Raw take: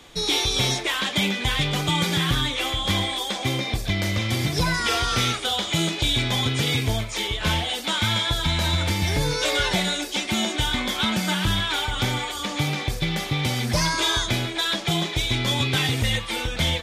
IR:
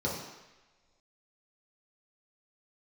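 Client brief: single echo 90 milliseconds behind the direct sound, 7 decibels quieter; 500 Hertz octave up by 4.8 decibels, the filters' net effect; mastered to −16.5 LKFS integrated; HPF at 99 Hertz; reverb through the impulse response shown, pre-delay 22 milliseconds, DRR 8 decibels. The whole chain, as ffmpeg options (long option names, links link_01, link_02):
-filter_complex "[0:a]highpass=99,equalizer=frequency=500:width_type=o:gain=6,aecho=1:1:90:0.447,asplit=2[link_01][link_02];[1:a]atrim=start_sample=2205,adelay=22[link_03];[link_02][link_03]afir=irnorm=-1:irlink=0,volume=-15.5dB[link_04];[link_01][link_04]amix=inputs=2:normalize=0,volume=4.5dB"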